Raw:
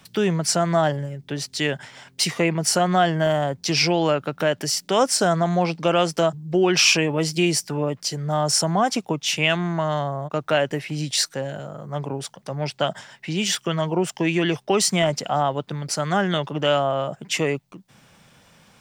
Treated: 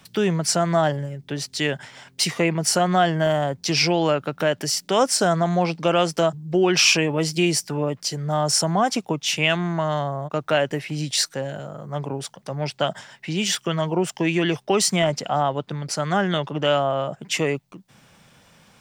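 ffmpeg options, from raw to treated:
-filter_complex "[0:a]asettb=1/sr,asplit=3[s0][s1][s2];[s0]atrim=end=14.964[s3];[s1]atrim=start=14.96:end=17.22,asetpts=PTS-STARTPTS,afade=t=in:d=0.004:c=qsin,afade=t=out:st=2.256:d=0.004:c=qsin,highshelf=f=7900:g=-5[s4];[s2]atrim=start=17.216[s5];[s3][s4]acrossfade=d=0.004:c1=hsin:c2=qsin[s6];[s6][s5]acrossfade=d=0.004:c1=qsin:c2=hsin"

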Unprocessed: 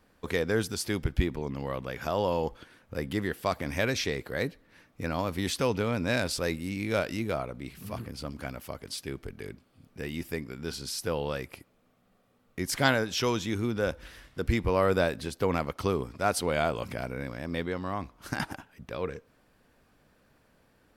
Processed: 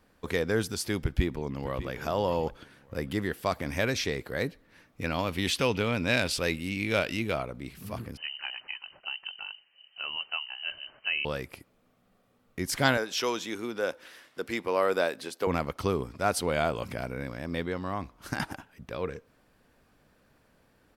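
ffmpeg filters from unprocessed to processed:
-filter_complex "[0:a]asplit=2[s0][s1];[s1]afade=t=in:st=1:d=0.01,afade=t=out:st=1.9:d=0.01,aecho=0:1:600|1200:0.237137|0.0474275[s2];[s0][s2]amix=inputs=2:normalize=0,asettb=1/sr,asplit=3[s3][s4][s5];[s3]atrim=end=5.014[s6];[s4]atrim=start=5.01:end=7.43,asetpts=PTS-STARTPTS,afade=t=in:d=0.004:c=qsin,afade=t=out:st=2.416:d=0.004:c=qsin,equalizer=f=2800:t=o:w=0.9:g=8.5[s7];[s5]atrim=start=7.426[s8];[s6][s7]acrossfade=d=0.004:c1=hsin:c2=qsin[s9];[s9][s8]acrossfade=d=0.004:c1=qsin:c2=hsin,asettb=1/sr,asplit=3[s10][s11][s12];[s10]atrim=end=8.174[s13];[s11]atrim=start=8.17:end=11.25,asetpts=PTS-STARTPTS,afade=t=in:d=0.004:c=qsin,afade=t=out:st=3.076:d=0.004:c=qsin,lowpass=f=2600:t=q:w=0.5098,lowpass=f=2600:t=q:w=0.6013,lowpass=f=2600:t=q:w=0.9,lowpass=f=2600:t=q:w=2.563,afreqshift=-3100[s14];[s12]atrim=start=11.246[s15];[s13][s14]acrossfade=d=0.004:c1=hsin:c2=qsin[s16];[s16][s15]acrossfade=d=0.004:c1=qsin:c2=hsin,asettb=1/sr,asplit=3[s17][s18][s19];[s17]atrim=end=12.974[s20];[s18]atrim=start=12.97:end=15.47,asetpts=PTS-STARTPTS,afade=t=in:d=0.004:c=qsin,afade=t=out:st=2.496:d=0.004:c=qsin,highpass=340[s21];[s19]atrim=start=15.466[s22];[s20][s21]acrossfade=d=0.004:c1=hsin:c2=qsin[s23];[s23][s22]acrossfade=d=0.004:c1=qsin:c2=hsin"

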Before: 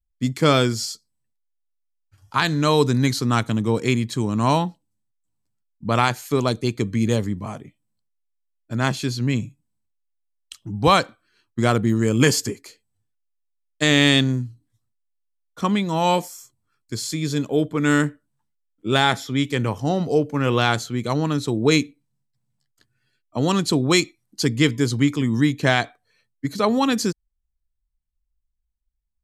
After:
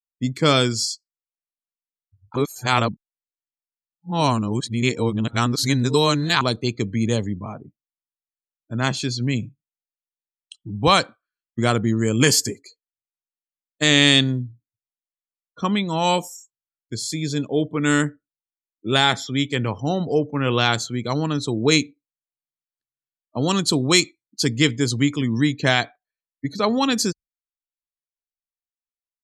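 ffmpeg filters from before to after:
-filter_complex "[0:a]asplit=3[s0][s1][s2];[s0]atrim=end=2.362[s3];[s1]atrim=start=2.358:end=6.412,asetpts=PTS-STARTPTS,areverse[s4];[s2]atrim=start=6.408[s5];[s3][s4]acrossfade=d=0.004:c1=hsin:c2=hsin[s6];[s6][s5]acrossfade=d=0.004:c1=hsin:c2=hsin,afftdn=nr=36:nf=-41,adynamicequalizer=threshold=0.02:dfrequency=2400:dqfactor=0.7:tfrequency=2400:tqfactor=0.7:attack=5:release=100:ratio=0.375:range=3:mode=boostabove:tftype=highshelf,volume=0.891"

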